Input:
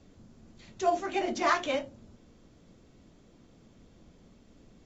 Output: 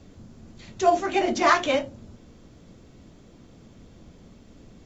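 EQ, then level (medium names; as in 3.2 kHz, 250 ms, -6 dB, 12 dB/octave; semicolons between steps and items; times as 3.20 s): peaking EQ 94 Hz +3 dB 1.3 oct; +7.0 dB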